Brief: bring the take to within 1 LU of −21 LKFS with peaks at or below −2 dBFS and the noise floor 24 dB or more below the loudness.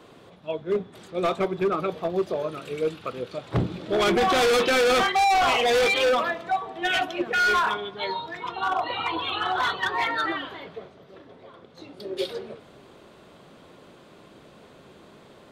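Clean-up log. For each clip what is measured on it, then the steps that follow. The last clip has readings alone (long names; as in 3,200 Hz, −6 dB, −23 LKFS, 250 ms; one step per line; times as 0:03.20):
integrated loudness −24.5 LKFS; sample peak −15.5 dBFS; target loudness −21.0 LKFS
→ level +3.5 dB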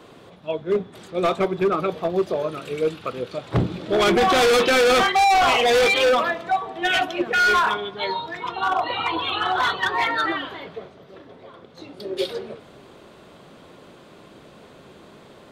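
integrated loudness −21.0 LKFS; sample peak −12.0 dBFS; background noise floor −48 dBFS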